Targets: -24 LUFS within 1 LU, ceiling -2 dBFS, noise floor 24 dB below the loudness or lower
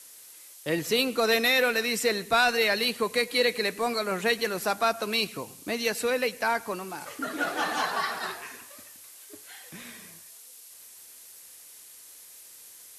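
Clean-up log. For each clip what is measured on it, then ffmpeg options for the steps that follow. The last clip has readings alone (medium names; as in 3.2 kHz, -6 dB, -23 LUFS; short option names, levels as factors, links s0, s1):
noise floor -49 dBFS; noise floor target -51 dBFS; loudness -26.5 LUFS; peak level -13.0 dBFS; loudness target -24.0 LUFS
-> -af "afftdn=nr=6:nf=-49"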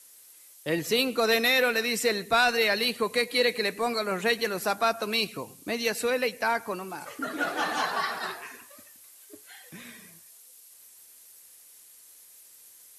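noise floor -53 dBFS; loudness -26.5 LUFS; peak level -13.0 dBFS; loudness target -24.0 LUFS
-> -af "volume=1.33"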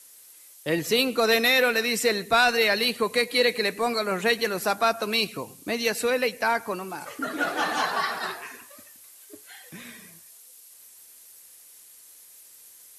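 loudness -24.0 LUFS; peak level -10.5 dBFS; noise floor -51 dBFS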